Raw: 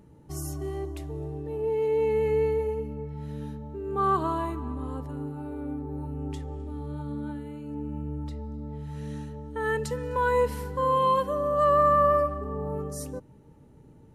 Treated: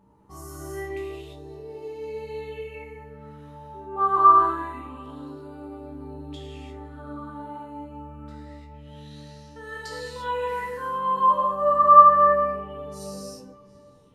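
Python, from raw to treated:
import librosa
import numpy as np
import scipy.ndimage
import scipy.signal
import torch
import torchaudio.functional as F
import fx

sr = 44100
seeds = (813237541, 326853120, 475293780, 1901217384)

p1 = fx.rider(x, sr, range_db=3, speed_s=2.0)
p2 = fx.resonator_bank(p1, sr, root=36, chord='fifth', decay_s=0.21)
p3 = p2 + fx.echo_tape(p2, sr, ms=733, feedback_pct=34, wet_db=-21.5, lp_hz=4600.0, drive_db=17.0, wow_cents=14, dry=0)
p4 = fx.rev_gated(p3, sr, seeds[0], gate_ms=370, shape='flat', drr_db=-5.5)
p5 = fx.bell_lfo(p4, sr, hz=0.26, low_hz=950.0, high_hz=5100.0, db=16)
y = F.gain(torch.from_numpy(p5), -5.0).numpy()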